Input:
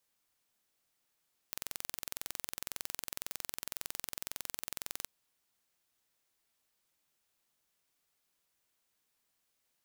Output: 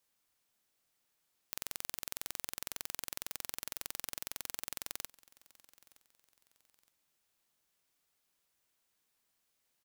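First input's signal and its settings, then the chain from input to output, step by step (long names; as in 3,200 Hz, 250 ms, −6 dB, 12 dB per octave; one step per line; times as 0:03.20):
impulse train 21.9 per second, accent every 0, −10.5 dBFS 3.54 s
repeating echo 917 ms, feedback 35%, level −22.5 dB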